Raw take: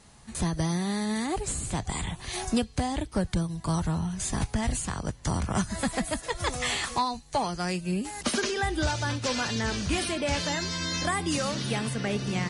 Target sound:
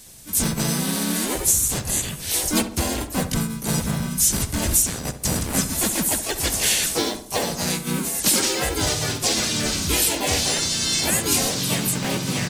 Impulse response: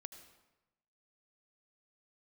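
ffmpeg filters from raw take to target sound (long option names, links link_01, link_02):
-filter_complex "[0:a]aemphasis=mode=production:type=75fm,acrossover=split=1500[link_01][link_02];[link_01]acrusher=samples=33:mix=1:aa=0.000001[link_03];[link_03][link_02]amix=inputs=2:normalize=0,asplit=3[link_04][link_05][link_06];[link_05]asetrate=37084,aresample=44100,atempo=1.18921,volume=-2dB[link_07];[link_06]asetrate=58866,aresample=44100,atempo=0.749154,volume=-1dB[link_08];[link_04][link_07][link_08]amix=inputs=3:normalize=0,asplit=2[link_09][link_10];[link_10]adelay=67,lowpass=frequency=1800:poles=1,volume=-10dB,asplit=2[link_11][link_12];[link_12]adelay=67,lowpass=frequency=1800:poles=1,volume=0.5,asplit=2[link_13][link_14];[link_14]adelay=67,lowpass=frequency=1800:poles=1,volume=0.5,asplit=2[link_15][link_16];[link_16]adelay=67,lowpass=frequency=1800:poles=1,volume=0.5,asplit=2[link_17][link_18];[link_18]adelay=67,lowpass=frequency=1800:poles=1,volume=0.5[link_19];[link_09][link_11][link_13][link_15][link_17][link_19]amix=inputs=6:normalize=0"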